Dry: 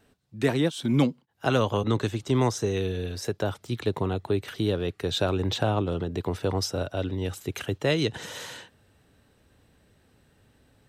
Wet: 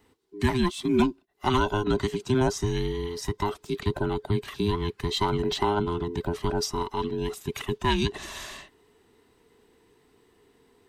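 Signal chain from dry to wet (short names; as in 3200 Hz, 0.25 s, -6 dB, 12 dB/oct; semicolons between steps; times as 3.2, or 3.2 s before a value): band inversion scrambler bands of 500 Hz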